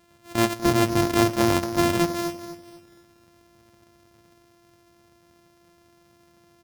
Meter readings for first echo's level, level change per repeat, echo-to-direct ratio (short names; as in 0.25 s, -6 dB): -12.0 dB, -9.0 dB, -11.5 dB